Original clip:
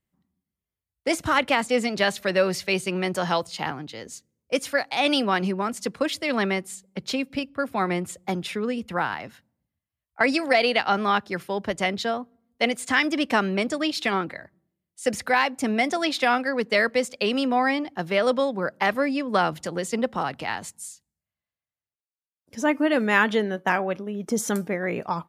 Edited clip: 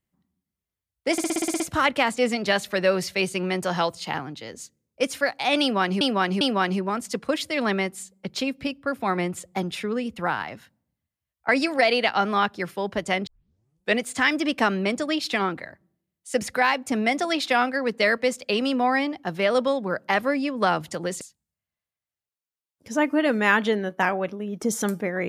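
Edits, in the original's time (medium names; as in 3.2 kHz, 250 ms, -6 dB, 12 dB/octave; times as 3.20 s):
1.12 s: stutter 0.06 s, 9 plays
5.13–5.53 s: loop, 3 plays
11.99 s: tape start 0.72 s
19.93–20.88 s: delete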